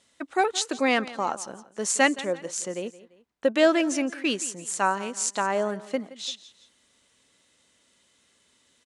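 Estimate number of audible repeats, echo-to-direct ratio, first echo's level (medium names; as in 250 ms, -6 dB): 2, -17.5 dB, -18.0 dB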